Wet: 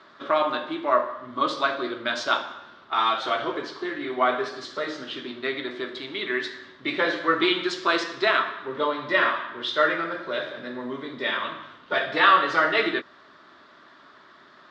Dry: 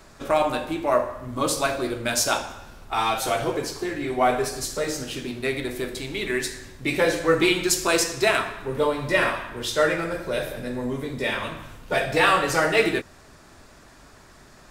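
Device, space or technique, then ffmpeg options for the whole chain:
phone earpiece: -af "highpass=360,equalizer=f=480:t=q:w=4:g=-9,equalizer=f=780:t=q:w=4:g=-9,equalizer=f=1.2k:t=q:w=4:g=4,equalizer=f=2.5k:t=q:w=4:g=-9,equalizer=f=3.5k:t=q:w=4:g=4,lowpass=f=3.7k:w=0.5412,lowpass=f=3.7k:w=1.3066,volume=2.5dB"

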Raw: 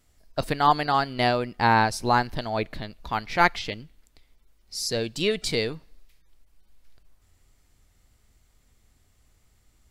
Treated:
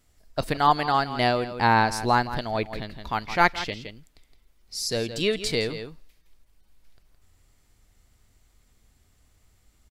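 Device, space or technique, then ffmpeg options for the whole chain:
ducked delay: -filter_complex "[0:a]asplit=3[a][b][c];[b]adelay=166,volume=-7dB[d];[c]apad=whole_len=443933[e];[d][e]sidechaincompress=threshold=-34dB:ratio=3:attack=7.4:release=177[f];[a][f]amix=inputs=2:normalize=0"

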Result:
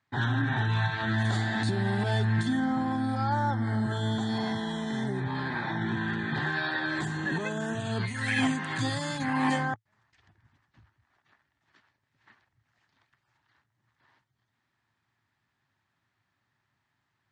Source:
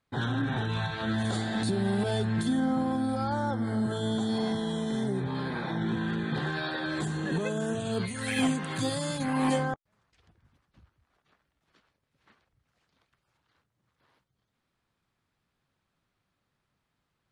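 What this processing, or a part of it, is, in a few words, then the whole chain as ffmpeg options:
car door speaker: -af "highpass=86,equalizer=f=110:t=q:w=4:g=7,equalizer=f=180:t=q:w=4:g=-5,equalizer=f=490:t=q:w=4:g=-10,equalizer=f=900:t=q:w=4:g=5,equalizer=f=1.8k:t=q:w=4:g=9,lowpass=f=7.9k:w=0.5412,lowpass=f=7.9k:w=1.3066"

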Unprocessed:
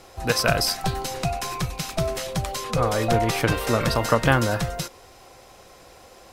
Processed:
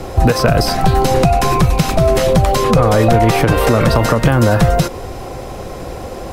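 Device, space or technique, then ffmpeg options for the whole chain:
mastering chain: -filter_complex "[0:a]equalizer=f=5.4k:t=o:w=1.7:g=-2.5,acrossover=split=510|1300|5300[a][b][c][d];[a]acompressor=threshold=-32dB:ratio=4[e];[b]acompressor=threshold=-29dB:ratio=4[f];[c]acompressor=threshold=-31dB:ratio=4[g];[d]acompressor=threshold=-38dB:ratio=4[h];[e][f][g][h]amix=inputs=4:normalize=0,acompressor=threshold=-30dB:ratio=2.5,asoftclip=type=tanh:threshold=-19dB,tiltshelf=f=640:g=7,alimiter=level_in=21.5dB:limit=-1dB:release=50:level=0:latency=1,volume=-1dB"

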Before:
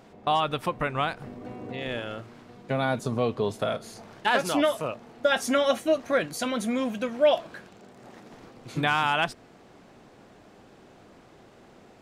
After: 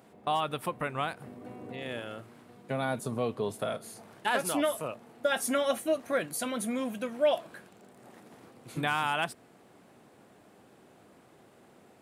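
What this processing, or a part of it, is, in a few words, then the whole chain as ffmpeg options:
budget condenser microphone: -af "highpass=95,highshelf=f=7.7k:t=q:w=1.5:g=8,volume=-5dB"

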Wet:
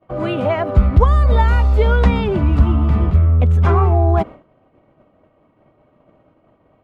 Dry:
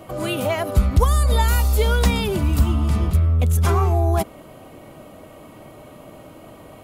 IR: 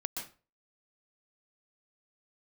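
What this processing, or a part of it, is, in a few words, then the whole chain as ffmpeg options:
hearing-loss simulation: -af "lowpass=2k,agate=range=-33dB:threshold=-30dB:ratio=3:detection=peak,volume=4.5dB"

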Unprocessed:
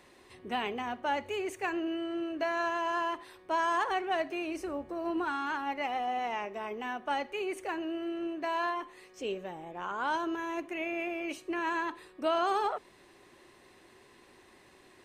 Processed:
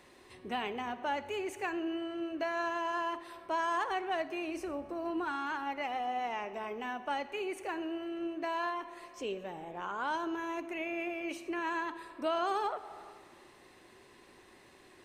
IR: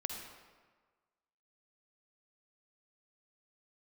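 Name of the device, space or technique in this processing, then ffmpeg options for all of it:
ducked reverb: -filter_complex "[0:a]asplit=3[a][b][c];[1:a]atrim=start_sample=2205[d];[b][d]afir=irnorm=-1:irlink=0[e];[c]apad=whole_len=663496[f];[e][f]sidechaincompress=threshold=-39dB:ratio=8:attack=40:release=326,volume=-3dB[g];[a][g]amix=inputs=2:normalize=0,volume=-4.5dB"

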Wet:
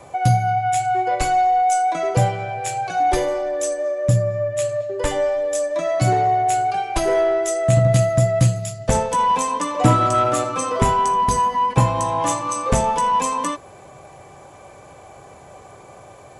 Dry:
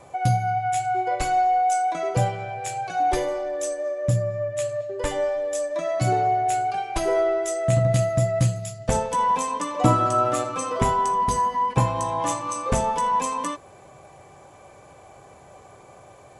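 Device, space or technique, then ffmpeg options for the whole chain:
one-band saturation: -filter_complex "[0:a]acrossover=split=220|4200[a][b][c];[b]asoftclip=type=tanh:threshold=-16dB[d];[a][d][c]amix=inputs=3:normalize=0,volume=5dB"

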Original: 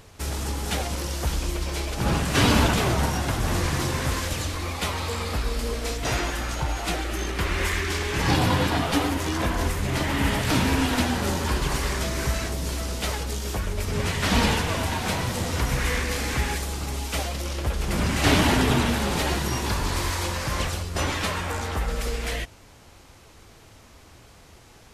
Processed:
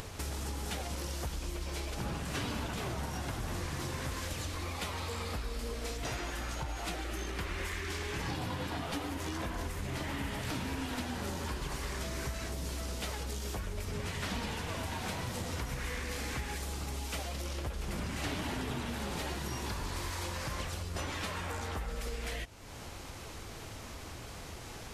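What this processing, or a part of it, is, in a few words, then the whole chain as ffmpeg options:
upward and downward compression: -af "acompressor=mode=upward:threshold=-25dB:ratio=2.5,acompressor=threshold=-26dB:ratio=6,volume=-7.5dB"

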